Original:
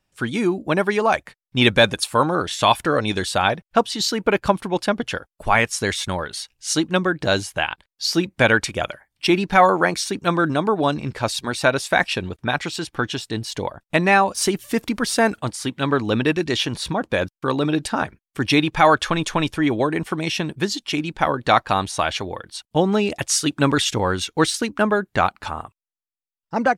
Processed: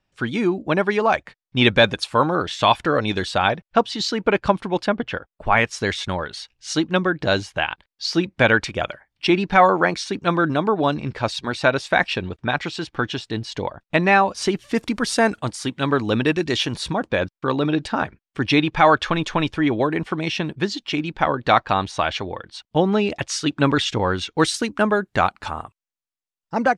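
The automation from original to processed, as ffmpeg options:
-af "asetnsamples=n=441:p=0,asendcmd='4.88 lowpass f 2800;5.57 lowpass f 4800;14.75 lowpass f 8700;17.09 lowpass f 4600;24.4 lowpass f 9200',lowpass=5k"

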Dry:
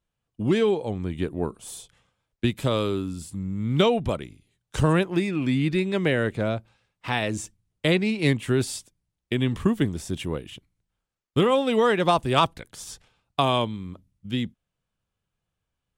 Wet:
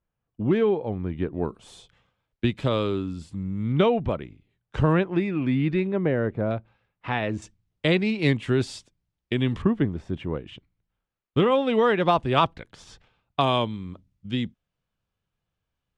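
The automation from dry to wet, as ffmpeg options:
-af "asetnsamples=n=441:p=0,asendcmd='1.34 lowpass f 4000;3.72 lowpass f 2400;5.87 lowpass f 1200;6.51 lowpass f 2400;7.42 lowpass f 4900;9.62 lowpass f 1900;10.47 lowpass f 3400;13.41 lowpass f 5500',lowpass=2k"

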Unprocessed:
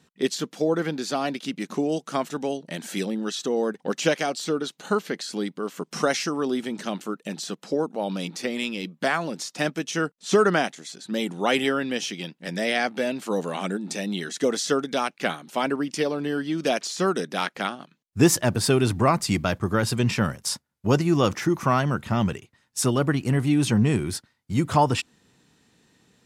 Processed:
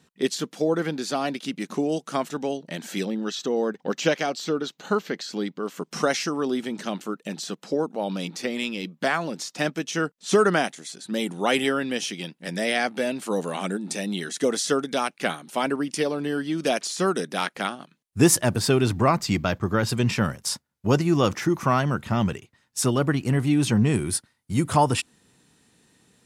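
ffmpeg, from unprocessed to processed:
-af "asetnsamples=n=441:p=0,asendcmd='2.31 equalizer g -5.5;3.05 equalizer g -13;5.66 equalizer g -1.5;10.28 equalizer g 7;18.59 equalizer g -4.5;19.17 equalizer g -11.5;19.89 equalizer g 0;23.94 equalizer g 11',equalizer=f=9.7k:t=o:w=0.44:g=2"

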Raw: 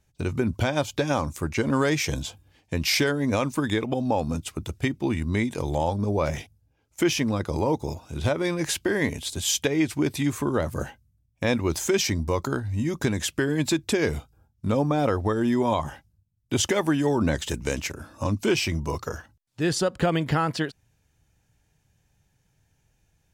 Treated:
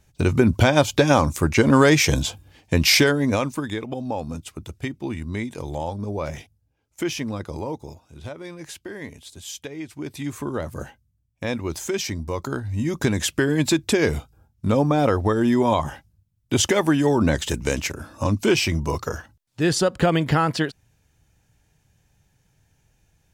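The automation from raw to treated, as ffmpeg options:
-af "volume=23dB,afade=t=out:st=2.78:d=0.89:silence=0.266073,afade=t=out:st=7.39:d=0.71:silence=0.421697,afade=t=in:st=9.91:d=0.5:silence=0.398107,afade=t=in:st=12.29:d=0.88:silence=0.446684"

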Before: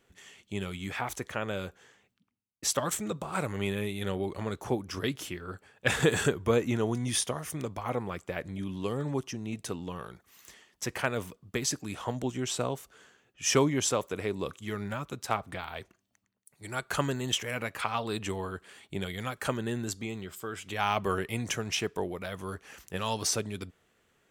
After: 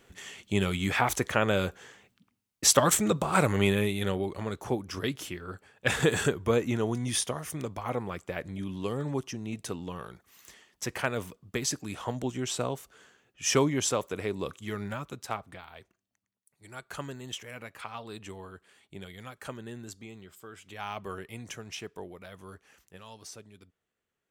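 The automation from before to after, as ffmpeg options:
-af "volume=8dB,afade=t=out:st=3.52:d=0.78:silence=0.398107,afade=t=out:st=14.85:d=0.79:silence=0.354813,afade=t=out:st=22.56:d=0.49:silence=0.421697"

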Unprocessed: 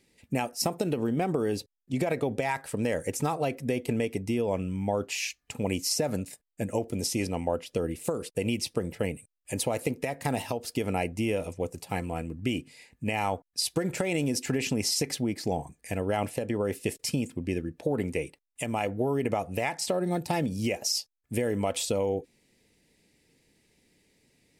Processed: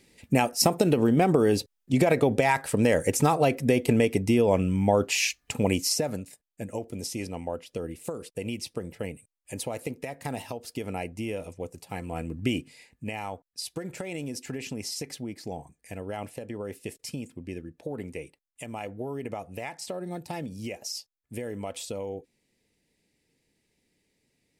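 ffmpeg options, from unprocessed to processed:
-af "volume=14dB,afade=t=out:st=5.51:d=0.71:silence=0.281838,afade=t=in:st=11.98:d=0.41:silence=0.421697,afade=t=out:st=12.39:d=0.83:silence=0.316228"

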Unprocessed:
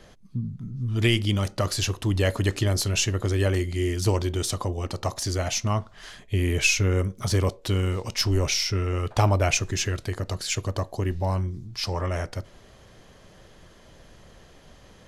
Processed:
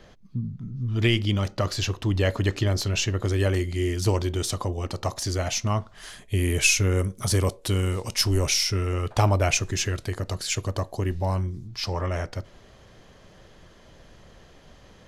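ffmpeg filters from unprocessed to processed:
-af "asetnsamples=n=441:p=0,asendcmd='3.22 equalizer g -1.5;5.95 equalizer g 9.5;8.94 equalizer g 1.5;11.68 equalizer g -6',equalizer=f=10k:t=o:w=0.81:g=-11"

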